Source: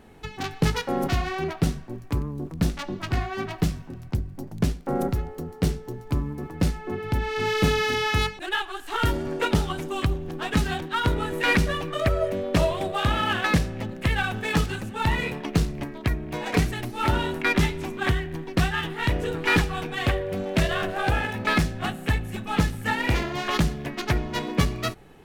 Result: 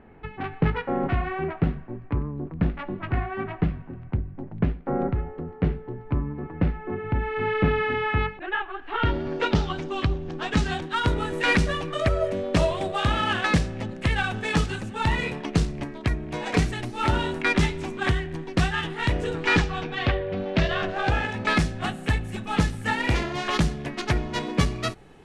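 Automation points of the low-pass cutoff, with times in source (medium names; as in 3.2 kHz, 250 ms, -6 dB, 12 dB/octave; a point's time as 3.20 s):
low-pass 24 dB/octave
8.80 s 2.4 kHz
9.40 s 5.6 kHz
10.11 s 5.6 kHz
10.91 s 9.2 kHz
19.26 s 9.2 kHz
20.28 s 4.1 kHz
21.68 s 10 kHz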